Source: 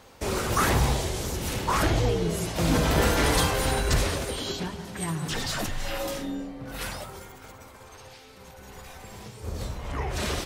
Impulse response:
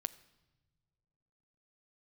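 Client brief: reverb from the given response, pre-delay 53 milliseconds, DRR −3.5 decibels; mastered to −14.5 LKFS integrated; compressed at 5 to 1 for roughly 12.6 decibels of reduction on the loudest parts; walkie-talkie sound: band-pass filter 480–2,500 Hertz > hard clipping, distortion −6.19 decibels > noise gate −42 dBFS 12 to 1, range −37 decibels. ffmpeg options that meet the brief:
-filter_complex "[0:a]acompressor=threshold=-33dB:ratio=5,asplit=2[link_01][link_02];[1:a]atrim=start_sample=2205,adelay=53[link_03];[link_02][link_03]afir=irnorm=-1:irlink=0,volume=5dB[link_04];[link_01][link_04]amix=inputs=2:normalize=0,highpass=480,lowpass=2500,asoftclip=type=hard:threshold=-39.5dB,agate=range=-37dB:threshold=-42dB:ratio=12,volume=27.5dB"

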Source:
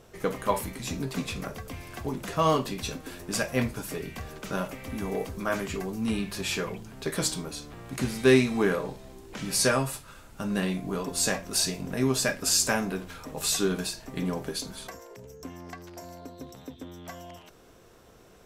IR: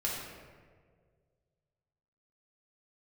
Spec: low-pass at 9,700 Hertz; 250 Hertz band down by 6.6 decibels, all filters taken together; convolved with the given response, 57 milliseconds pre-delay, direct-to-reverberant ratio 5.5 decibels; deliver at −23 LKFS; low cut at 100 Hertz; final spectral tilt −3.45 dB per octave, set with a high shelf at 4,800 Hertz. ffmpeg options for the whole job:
-filter_complex "[0:a]highpass=100,lowpass=9700,equalizer=frequency=250:width_type=o:gain=-8.5,highshelf=frequency=4800:gain=7.5,asplit=2[link_01][link_02];[1:a]atrim=start_sample=2205,adelay=57[link_03];[link_02][link_03]afir=irnorm=-1:irlink=0,volume=-10.5dB[link_04];[link_01][link_04]amix=inputs=2:normalize=0,volume=4dB"

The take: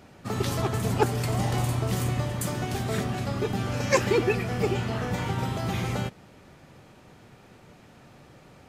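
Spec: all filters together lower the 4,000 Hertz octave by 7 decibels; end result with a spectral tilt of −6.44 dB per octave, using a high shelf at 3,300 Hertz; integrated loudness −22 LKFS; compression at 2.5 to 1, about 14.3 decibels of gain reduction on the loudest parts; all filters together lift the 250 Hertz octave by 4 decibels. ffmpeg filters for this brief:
ffmpeg -i in.wav -af "equalizer=frequency=250:width_type=o:gain=5.5,highshelf=frequency=3300:gain=-3.5,equalizer=frequency=4000:width_type=o:gain=-7,acompressor=threshold=-39dB:ratio=2.5,volume=15.5dB" out.wav

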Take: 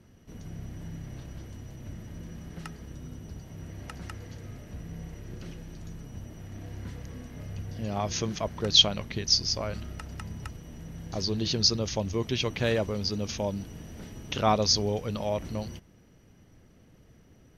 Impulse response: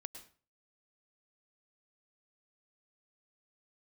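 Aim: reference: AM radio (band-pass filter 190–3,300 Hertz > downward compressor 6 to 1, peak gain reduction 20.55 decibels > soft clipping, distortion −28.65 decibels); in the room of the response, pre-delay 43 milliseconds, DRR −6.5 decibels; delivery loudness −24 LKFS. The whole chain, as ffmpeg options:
-filter_complex "[0:a]asplit=2[link_01][link_02];[1:a]atrim=start_sample=2205,adelay=43[link_03];[link_02][link_03]afir=irnorm=-1:irlink=0,volume=10.5dB[link_04];[link_01][link_04]amix=inputs=2:normalize=0,highpass=190,lowpass=3300,acompressor=threshold=-33dB:ratio=6,asoftclip=threshold=-21dB,volume=14.5dB"

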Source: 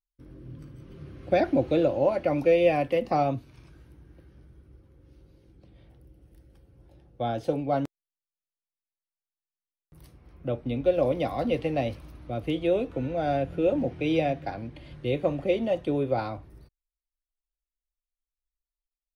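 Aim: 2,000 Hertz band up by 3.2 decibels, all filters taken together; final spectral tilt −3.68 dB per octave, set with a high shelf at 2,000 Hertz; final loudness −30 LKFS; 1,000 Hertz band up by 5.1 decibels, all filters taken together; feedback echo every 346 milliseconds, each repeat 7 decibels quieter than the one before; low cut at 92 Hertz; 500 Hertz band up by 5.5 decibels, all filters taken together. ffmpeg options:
ffmpeg -i in.wav -af "highpass=92,equalizer=frequency=500:width_type=o:gain=5,equalizer=frequency=1000:width_type=o:gain=5.5,highshelf=frequency=2000:gain=-9,equalizer=frequency=2000:width_type=o:gain=8.5,aecho=1:1:346|692|1038|1384|1730:0.447|0.201|0.0905|0.0407|0.0183,volume=-8dB" out.wav

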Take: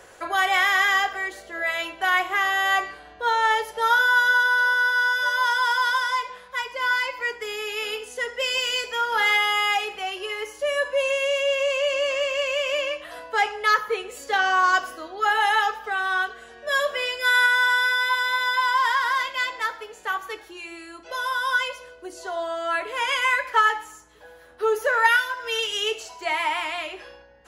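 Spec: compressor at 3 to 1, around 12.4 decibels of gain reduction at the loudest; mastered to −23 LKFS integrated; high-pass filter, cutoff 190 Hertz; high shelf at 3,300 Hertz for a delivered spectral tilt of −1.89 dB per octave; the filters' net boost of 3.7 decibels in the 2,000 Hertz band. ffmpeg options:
ffmpeg -i in.wav -af "highpass=190,equalizer=frequency=2000:width_type=o:gain=3.5,highshelf=frequency=3300:gain=6,acompressor=threshold=-28dB:ratio=3,volume=5dB" out.wav

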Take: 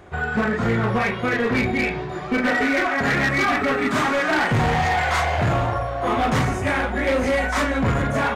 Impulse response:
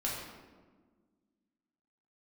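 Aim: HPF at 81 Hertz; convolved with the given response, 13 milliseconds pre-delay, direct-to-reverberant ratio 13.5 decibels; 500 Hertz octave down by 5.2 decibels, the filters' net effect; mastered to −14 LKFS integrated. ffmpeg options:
-filter_complex "[0:a]highpass=81,equalizer=frequency=500:width_type=o:gain=-6.5,asplit=2[link_01][link_02];[1:a]atrim=start_sample=2205,adelay=13[link_03];[link_02][link_03]afir=irnorm=-1:irlink=0,volume=-18dB[link_04];[link_01][link_04]amix=inputs=2:normalize=0,volume=8dB"

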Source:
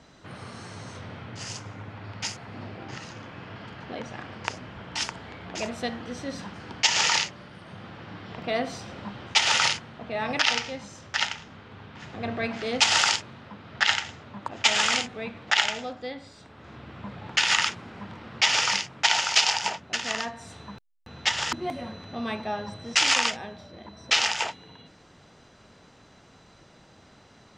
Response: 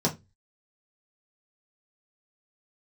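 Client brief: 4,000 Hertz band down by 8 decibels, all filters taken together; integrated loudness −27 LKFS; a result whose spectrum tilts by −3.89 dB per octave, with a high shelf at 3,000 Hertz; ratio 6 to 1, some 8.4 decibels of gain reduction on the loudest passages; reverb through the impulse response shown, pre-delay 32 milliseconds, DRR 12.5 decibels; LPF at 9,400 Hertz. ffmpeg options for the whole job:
-filter_complex "[0:a]lowpass=9400,highshelf=frequency=3000:gain=-7,equalizer=frequency=4000:width_type=o:gain=-5.5,acompressor=threshold=-30dB:ratio=6,asplit=2[link_01][link_02];[1:a]atrim=start_sample=2205,adelay=32[link_03];[link_02][link_03]afir=irnorm=-1:irlink=0,volume=-22.5dB[link_04];[link_01][link_04]amix=inputs=2:normalize=0,volume=9.5dB"

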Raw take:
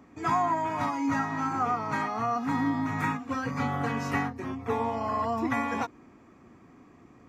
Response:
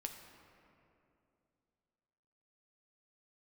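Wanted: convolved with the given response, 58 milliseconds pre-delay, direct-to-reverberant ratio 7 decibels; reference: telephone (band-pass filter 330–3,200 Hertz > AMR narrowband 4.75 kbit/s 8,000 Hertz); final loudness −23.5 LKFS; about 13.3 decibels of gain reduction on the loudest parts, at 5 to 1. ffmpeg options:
-filter_complex "[0:a]acompressor=threshold=-39dB:ratio=5,asplit=2[link_01][link_02];[1:a]atrim=start_sample=2205,adelay=58[link_03];[link_02][link_03]afir=irnorm=-1:irlink=0,volume=-4.5dB[link_04];[link_01][link_04]amix=inputs=2:normalize=0,highpass=330,lowpass=3200,volume=20.5dB" -ar 8000 -c:a libopencore_amrnb -b:a 4750

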